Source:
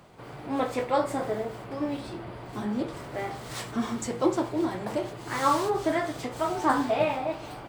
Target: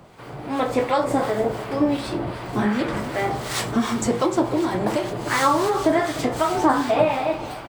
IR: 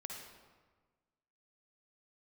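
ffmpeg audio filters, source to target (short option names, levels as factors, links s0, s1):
-filter_complex "[0:a]asplit=2[s0][s1];[s1]aecho=0:1:295:0.168[s2];[s0][s2]amix=inputs=2:normalize=0,dynaudnorm=f=110:g=13:m=1.78,asettb=1/sr,asplit=3[s3][s4][s5];[s3]atrim=end=2.594[s6];[s4]atrim=start=2.59:end=3,asetpts=PTS-STARTPTS,afade=t=in:d=0.004:c=qsin,afade=t=out:st=0.406:d=0.004:c=qsin,equalizer=f=1800:w=1.2:g=9[s7];[s5]atrim=start=2.996[s8];[s6][s7]acrossfade=d=0.004:c1=hsin:c2=qsin[s9];[s9][s8]acrossfade=d=0.004:c1=qsin:c2=hsin,acompressor=threshold=0.0794:ratio=2.5,acrossover=split=1000[s10][s11];[s10]aeval=exprs='val(0)*(1-0.5/2+0.5/2*cos(2*PI*2.7*n/s))':c=same[s12];[s11]aeval=exprs='val(0)*(1-0.5/2-0.5/2*cos(2*PI*2.7*n/s))':c=same[s13];[s12][s13]amix=inputs=2:normalize=0,volume=2.37"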